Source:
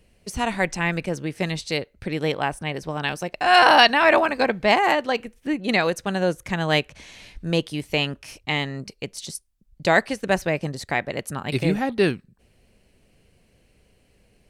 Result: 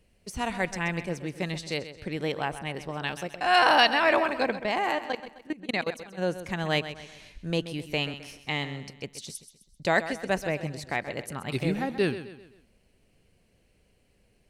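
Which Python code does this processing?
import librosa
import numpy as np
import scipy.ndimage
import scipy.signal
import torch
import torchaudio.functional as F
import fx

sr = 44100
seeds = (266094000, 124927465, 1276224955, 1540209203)

y = fx.level_steps(x, sr, step_db=21, at=(4.56, 6.17), fade=0.02)
y = fx.echo_feedback(y, sr, ms=130, feedback_pct=42, wet_db=-12.5)
y = y * librosa.db_to_amplitude(-6.0)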